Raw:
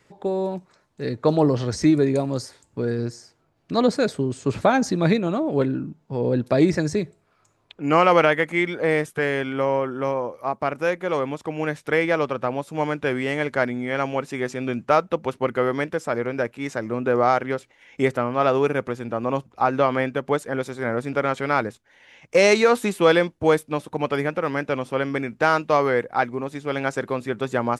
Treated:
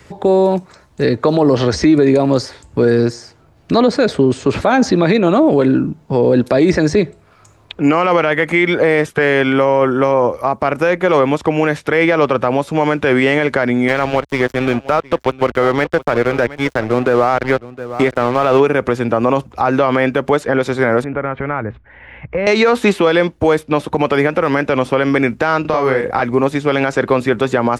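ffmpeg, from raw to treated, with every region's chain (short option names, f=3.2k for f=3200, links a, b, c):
-filter_complex "[0:a]asettb=1/sr,asplit=3[a][b][c];[a]atrim=end=13.884[d];[b]atrim=start=13.88:end=18.6,asetpts=PTS-STARTPTS,afade=t=in:d=0.004:c=qsin,afade=t=out:st=4.716:d=0.004:c=qsin,aeval=exprs='sgn(val(0))*max(abs(val(0))-0.0211,0)':c=same,aecho=1:1:713:0.0944,atrim=end_sample=208152[e];[c]atrim=start=18.596[f];[d][e]acrossfade=d=0.004:c1=hsin:c2=qsin[g];[g][f]acrossfade=d=0.004:c1=qsin:c2=hsin,asettb=1/sr,asplit=3[h][i][j];[h]atrim=end=21.044[k];[i]atrim=start=21.04:end=22.47,asetpts=PTS-STARTPTS,afade=t=in:d=0.004:c=qsin,afade=t=out:st=1.426:d=0.004:c=qsin,acompressor=threshold=-37dB:ratio=2.5:attack=3.2:release=140:knee=1:detection=peak,lowpass=f=2.2k:w=0.5412,lowpass=f=2.2k:w=1.3066,asubboost=boost=5.5:cutoff=190[l];[j]atrim=start=22.466[m];[k][l]acrossfade=d=0.004:c1=hsin:c2=qsin[n];[n][m]acrossfade=d=0.004:c1=qsin:c2=hsin,asettb=1/sr,asplit=3[o][p][q];[o]atrim=end=25.614[r];[p]atrim=start=25.61:end=26.22,asetpts=PTS-STARTPTS,afade=t=in:d=0.004:c=qsin,afade=t=out:st=0.606:d=0.004:c=qsin,acompressor=threshold=-26dB:ratio=16:attack=3.2:release=140:knee=1:detection=peak,asplit=2[s][t];[t]adelay=38,volume=-4.5dB[u];[s][u]amix=inputs=2:normalize=0,atrim=end_sample=26901[v];[q]atrim=start=26.216[w];[r][v]acrossfade=d=0.004:c1=hsin:c2=qsin[x];[x][w]acrossfade=d=0.004:c1=qsin:c2=hsin,equalizer=f=64:w=1.3:g=13.5,acrossover=split=230|5100[y][z][aa];[y]acompressor=threshold=-39dB:ratio=4[ab];[z]acompressor=threshold=-19dB:ratio=4[ac];[aa]acompressor=threshold=-59dB:ratio=4[ad];[ab][ac][ad]amix=inputs=3:normalize=0,alimiter=level_in=17.5dB:limit=-1dB:release=50:level=0:latency=1,volume=-2.5dB"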